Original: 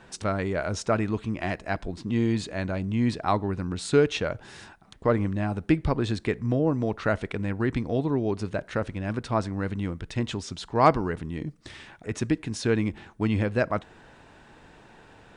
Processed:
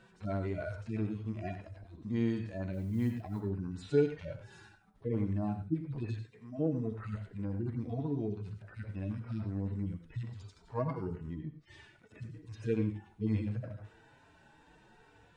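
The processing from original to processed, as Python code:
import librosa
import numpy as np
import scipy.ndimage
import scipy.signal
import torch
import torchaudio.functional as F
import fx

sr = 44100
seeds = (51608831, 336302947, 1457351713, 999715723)

y = fx.hpss_only(x, sr, part='harmonic')
y = fx.mod_noise(y, sr, seeds[0], snr_db=35, at=(2.72, 3.4), fade=0.02)
y = fx.highpass(y, sr, hz=fx.line((6.13, 330.0), (6.58, 1000.0)), slope=6, at=(6.13, 6.58), fade=0.02)
y = fx.env_lowpass_down(y, sr, base_hz=2600.0, full_db=-31.5, at=(11.33, 12.2))
y = fx.rev_gated(y, sr, seeds[1], gate_ms=120, shape='rising', drr_db=8.0)
y = F.gain(torch.from_numpy(y), -7.0).numpy()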